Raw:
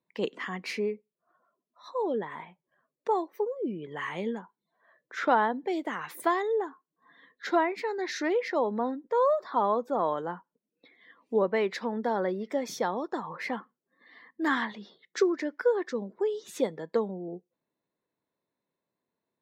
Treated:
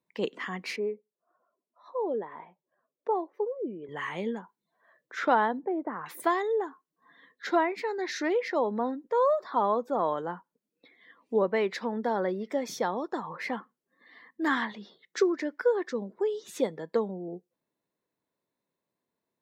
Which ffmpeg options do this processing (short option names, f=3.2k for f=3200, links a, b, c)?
-filter_complex "[0:a]asettb=1/sr,asplit=3[a][b][c];[a]atrim=end=0.764[d];[b]atrim=start=0.76:end=3.89,asetpts=PTS-STARTPTS,afade=t=in:d=0.004:c=qsin,afade=t=out:st=3.126:d=0.004:c=qsin,bandpass=f=550:t=q:w=0.77[e];[c]atrim=start=3.886[f];[d][e]acrossfade=d=0.004:c1=hsin:c2=qsin[g];[g][f]acrossfade=d=0.004:c1=qsin:c2=hsin,asettb=1/sr,asplit=3[h][i][j];[h]atrim=end=5.594[k];[i]atrim=start=5.59:end=6.06,asetpts=PTS-STARTPTS,afade=t=in:d=0.004:c=qsin,afade=t=out:st=0.466:d=0.004:c=qsin,lowpass=f=1.4k:w=0.5412,lowpass=f=1.4k:w=1.3066[l];[j]atrim=start=6.056[m];[k][l]acrossfade=d=0.004:c1=hsin:c2=qsin[n];[n][m]acrossfade=d=0.004:c1=qsin:c2=hsin"